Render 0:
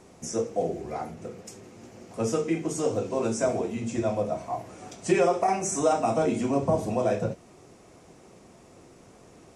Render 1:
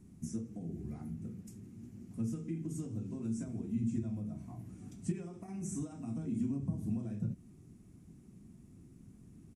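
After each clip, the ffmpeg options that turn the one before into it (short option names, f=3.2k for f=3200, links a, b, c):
-af "highshelf=f=4.5k:g=-6.5,acompressor=threshold=-29dB:ratio=4,firequalizer=gain_entry='entry(220,0);entry(510,-28);entry(1600,-20);entry(5100,-17);entry(11000,-1)':delay=0.05:min_phase=1,volume=1.5dB"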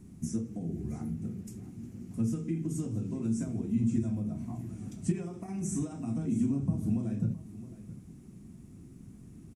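-af "aecho=1:1:667:0.168,volume=6dB"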